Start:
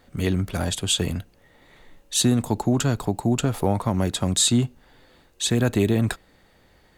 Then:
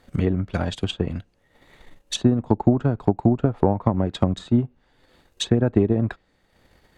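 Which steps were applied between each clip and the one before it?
transient designer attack +8 dB, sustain −7 dB
treble cut that deepens with the level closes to 1,100 Hz, closed at −15 dBFS
level −1 dB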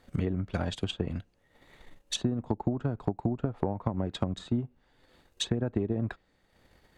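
downward compressor 4 to 1, threshold −21 dBFS, peak gain reduction 9 dB
level −4.5 dB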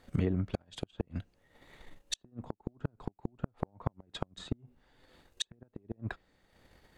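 gate with flip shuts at −19 dBFS, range −36 dB

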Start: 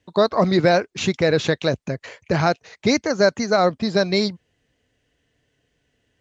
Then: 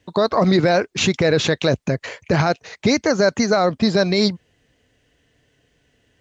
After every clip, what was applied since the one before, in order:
brickwall limiter −13.5 dBFS, peak gain reduction 9 dB
level +6.5 dB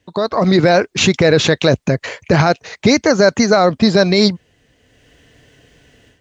automatic gain control gain up to 14 dB
level −1 dB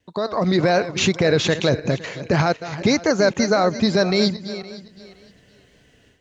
feedback delay that plays each chunk backwards 257 ms, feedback 46%, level −12.5 dB
tape wow and flutter 22 cents
level −6 dB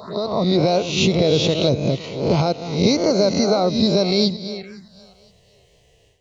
peak hold with a rise ahead of every peak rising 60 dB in 0.66 s
phaser swept by the level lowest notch 230 Hz, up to 1,700 Hz, full sweep at −22.5 dBFS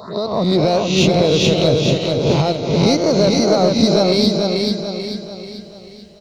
in parallel at −7 dB: hard clipping −15 dBFS, distortion −12 dB
on the sum: repeating echo 438 ms, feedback 45%, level −3.5 dB
level −1 dB

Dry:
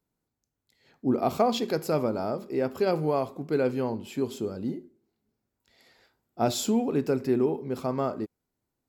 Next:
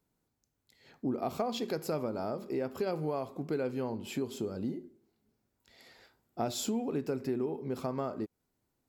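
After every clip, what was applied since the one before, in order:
downward compressor 3 to 1, threshold −36 dBFS, peak gain reduction 13.5 dB
level +2.5 dB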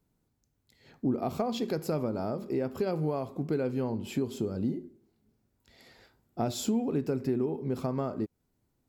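low-shelf EQ 280 Hz +8.5 dB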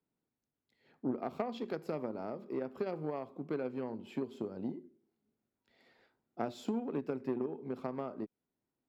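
harmonic generator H 3 −15 dB, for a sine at −17.5 dBFS
three-way crossover with the lows and the highs turned down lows −15 dB, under 170 Hz, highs −14 dB, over 3,800 Hz
level −2 dB

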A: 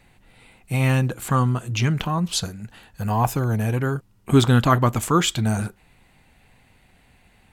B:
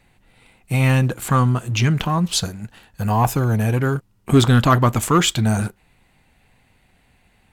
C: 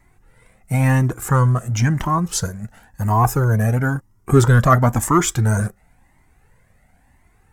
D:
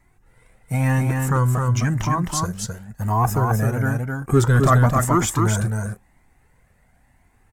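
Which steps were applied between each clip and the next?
leveller curve on the samples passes 1
flat-topped bell 3,300 Hz −11.5 dB 1.1 octaves; flanger whose copies keep moving one way rising 0.97 Hz; level +5.5 dB
single-tap delay 262 ms −4 dB; level −3.5 dB

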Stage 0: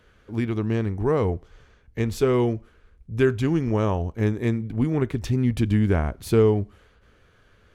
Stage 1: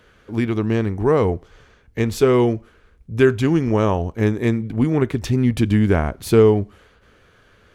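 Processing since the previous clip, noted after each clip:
low-shelf EQ 100 Hz −7 dB
level +6 dB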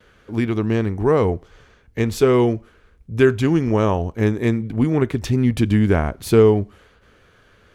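noise gate with hold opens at −46 dBFS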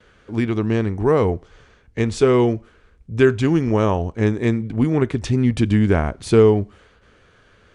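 Butterworth low-pass 9,800 Hz 72 dB per octave

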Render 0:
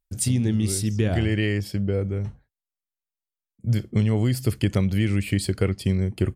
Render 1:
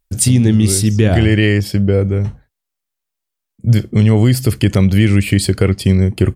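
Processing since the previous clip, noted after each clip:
boost into a limiter +12 dB
level −1 dB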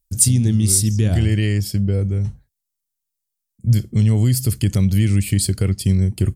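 bass and treble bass +10 dB, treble +15 dB
level −13 dB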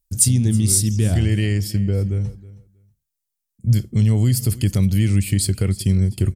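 repeating echo 319 ms, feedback 16%, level −19 dB
level −1 dB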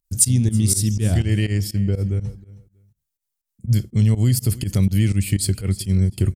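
fake sidechain pumping 123 BPM, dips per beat 2, −19 dB, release 100 ms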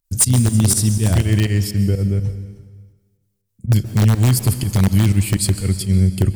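in parallel at −7 dB: wrap-around overflow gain 9.5 dB
on the sum: dense smooth reverb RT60 1.4 s, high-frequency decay 1×, pre-delay 115 ms, DRR 12 dB

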